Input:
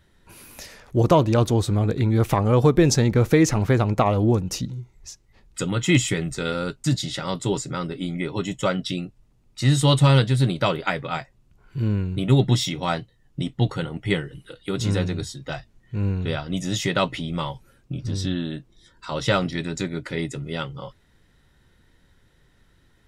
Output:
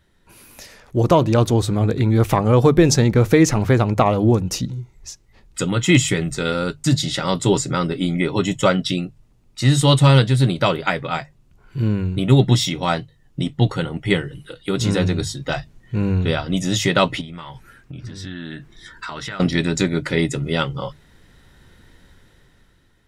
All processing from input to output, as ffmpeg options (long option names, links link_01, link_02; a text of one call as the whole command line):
ffmpeg -i in.wav -filter_complex "[0:a]asettb=1/sr,asplit=3[link_01][link_02][link_03];[link_01]atrim=end=17.214[link_04];[link_02]atrim=start=17.21:end=19.4,asetpts=PTS-STARTPTS,afade=type=in:duration=0.004:curve=qsin,afade=type=out:start_time=2.186:duration=0.004:curve=qsin,equalizer=frequency=1700:width_type=o:width=1:gain=11,bandreject=frequency=540:width=7.4,acompressor=threshold=-36dB:ratio=10:attack=3.2:release=140:knee=1:detection=peak[link_05];[link_03]atrim=start=19.396[link_06];[link_04][link_05]acrossfade=duration=0.004:curve1=hsin:curve2=qsin[link_07];[link_07][link_06]acrossfade=duration=0.004:curve1=qsin:curve2=hsin,bandreject=frequency=50:width_type=h:width=6,bandreject=frequency=100:width_type=h:width=6,bandreject=frequency=150:width_type=h:width=6,dynaudnorm=framelen=230:gausssize=9:maxgain=11.5dB,volume=-1dB" out.wav